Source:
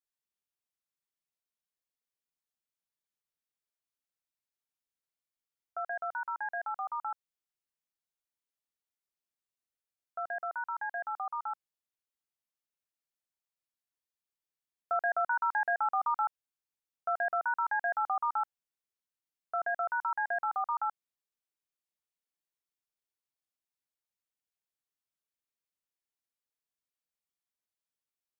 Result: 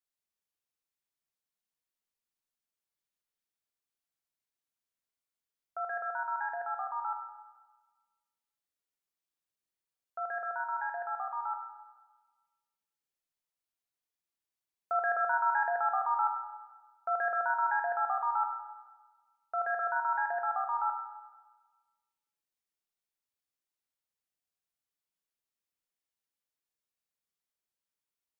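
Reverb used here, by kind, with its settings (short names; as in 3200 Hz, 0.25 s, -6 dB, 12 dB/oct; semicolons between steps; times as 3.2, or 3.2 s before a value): Schroeder reverb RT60 1.3 s, combs from 33 ms, DRR 4 dB; gain -1.5 dB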